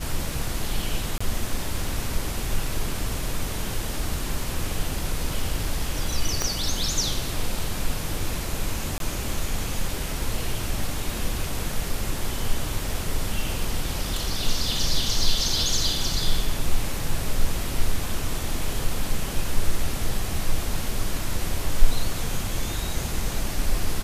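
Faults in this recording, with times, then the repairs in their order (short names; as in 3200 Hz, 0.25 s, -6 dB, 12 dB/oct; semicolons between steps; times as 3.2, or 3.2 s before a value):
1.18–1.21 gap 25 ms
6.42 pop -9 dBFS
8.98–9 gap 22 ms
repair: de-click; interpolate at 1.18, 25 ms; interpolate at 8.98, 22 ms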